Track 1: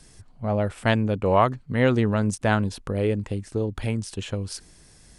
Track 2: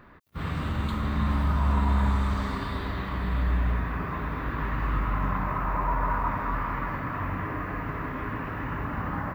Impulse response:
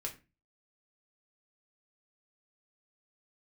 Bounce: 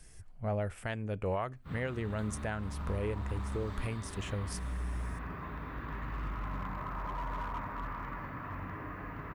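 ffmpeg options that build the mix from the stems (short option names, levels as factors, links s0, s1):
-filter_complex "[0:a]equalizer=f=125:t=o:w=1:g=-5,equalizer=f=250:t=o:w=1:g=-10,equalizer=f=500:t=o:w=1:g=-4,equalizer=f=1000:t=o:w=1:g=-7,equalizer=f=4000:t=o:w=1:g=-11,equalizer=f=8000:t=o:w=1:g=-4,volume=0.944,asplit=2[s0][s1];[s1]volume=0.106[s2];[1:a]acontrast=89,asoftclip=type=hard:threshold=0.188,adelay=1300,volume=0.133[s3];[2:a]atrim=start_sample=2205[s4];[s2][s4]afir=irnorm=-1:irlink=0[s5];[s0][s3][s5]amix=inputs=3:normalize=0,alimiter=level_in=1.06:limit=0.0631:level=0:latency=1:release=456,volume=0.944"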